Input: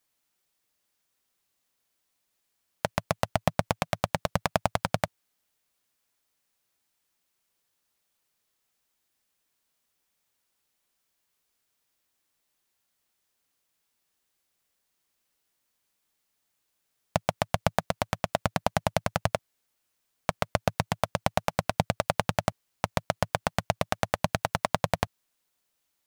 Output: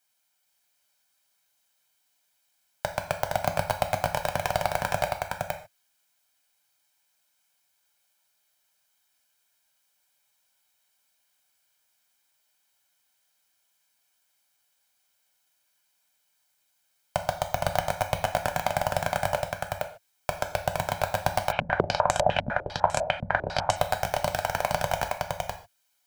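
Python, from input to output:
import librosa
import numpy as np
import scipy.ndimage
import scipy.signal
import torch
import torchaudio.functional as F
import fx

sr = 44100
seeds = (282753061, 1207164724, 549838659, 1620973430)

y = scipy.signal.sosfilt(scipy.signal.butter(2, 47.0, 'highpass', fs=sr, output='sos'), x)
y = fx.low_shelf(y, sr, hz=380.0, db=-10.5)
y = y + 0.55 * np.pad(y, (int(1.3 * sr / 1000.0), 0))[:len(y)]
y = 10.0 ** (-12.0 / 20.0) * (np.abs((y / 10.0 ** (-12.0 / 20.0) + 3.0) % 4.0 - 2.0) - 1.0)
y = y + 10.0 ** (-3.0 / 20.0) * np.pad(y, (int(465 * sr / 1000.0), 0))[:len(y)]
y = fx.rev_gated(y, sr, seeds[0], gate_ms=170, shape='falling', drr_db=5.5)
y = fx.filter_held_lowpass(y, sr, hz=10.0, low_hz=240.0, high_hz=7600.0, at=(21.51, 23.75), fade=0.02)
y = F.gain(torch.from_numpy(y), 1.5).numpy()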